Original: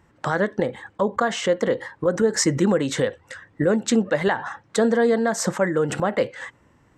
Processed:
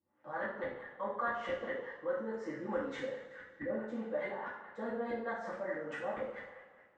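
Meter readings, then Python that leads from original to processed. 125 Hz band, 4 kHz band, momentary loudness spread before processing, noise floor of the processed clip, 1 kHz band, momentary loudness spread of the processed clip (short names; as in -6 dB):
-25.5 dB, -24.0 dB, 8 LU, -64 dBFS, -13.0 dB, 7 LU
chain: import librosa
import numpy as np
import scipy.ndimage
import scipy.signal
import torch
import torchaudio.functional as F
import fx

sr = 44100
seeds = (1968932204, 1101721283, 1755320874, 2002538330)

y = np.diff(x, prepend=0.0)
y = fx.echo_wet_bandpass(y, sr, ms=86, feedback_pct=69, hz=1400.0, wet_db=-12)
y = fx.filter_lfo_lowpass(y, sr, shape='saw_up', hz=4.7, low_hz=290.0, high_hz=1800.0, q=1.0)
y = fx.air_absorb(y, sr, metres=63.0)
y = fx.rev_double_slope(y, sr, seeds[0], early_s=0.61, late_s=2.2, knee_db=-18, drr_db=-9.5)
y = F.gain(torch.from_numpy(y), -3.5).numpy()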